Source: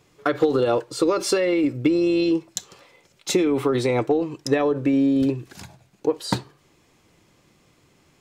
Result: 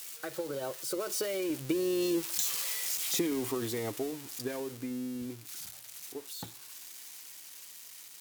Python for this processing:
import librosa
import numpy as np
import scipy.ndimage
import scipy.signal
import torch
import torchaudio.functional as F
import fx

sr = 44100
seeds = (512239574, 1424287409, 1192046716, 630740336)

y = x + 0.5 * 10.0 ** (-15.0 / 20.0) * np.diff(np.sign(x), prepend=np.sign(x[:1]))
y = fx.doppler_pass(y, sr, speed_mps=33, closest_m=29.0, pass_at_s=2.43)
y = y * 10.0 ** (-9.0 / 20.0)